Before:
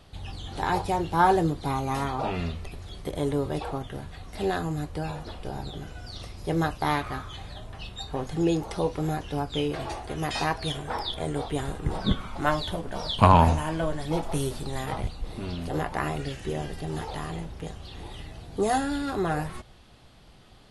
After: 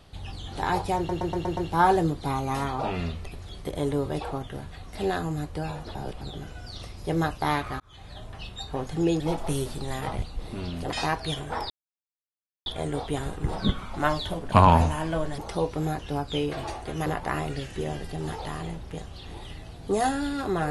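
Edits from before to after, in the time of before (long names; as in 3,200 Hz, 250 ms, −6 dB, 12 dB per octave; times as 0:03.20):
0:00.97: stutter 0.12 s, 6 plays
0:05.35–0:05.61: reverse
0:07.20–0:07.62: fade in
0:08.60–0:10.28: swap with 0:14.05–0:15.75
0:11.08: splice in silence 0.96 s
0:12.94–0:13.19: remove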